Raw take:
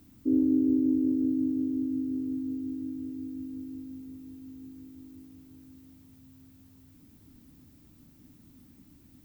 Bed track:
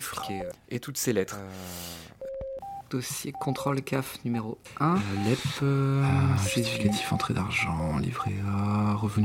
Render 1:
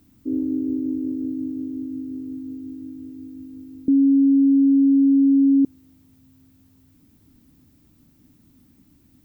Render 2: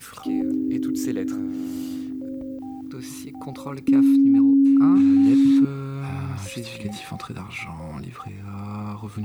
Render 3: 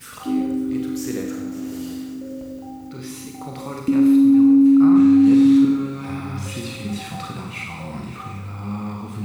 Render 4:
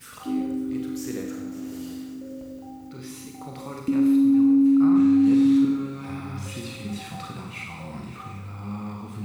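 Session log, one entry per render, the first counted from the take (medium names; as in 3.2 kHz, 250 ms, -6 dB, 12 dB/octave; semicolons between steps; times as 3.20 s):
3.88–5.65 s: bleep 275 Hz -12 dBFS
add bed track -6 dB
multi-head delay 184 ms, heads first and third, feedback 62%, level -16.5 dB; Schroeder reverb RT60 0.88 s, combs from 31 ms, DRR 0.5 dB
trim -5 dB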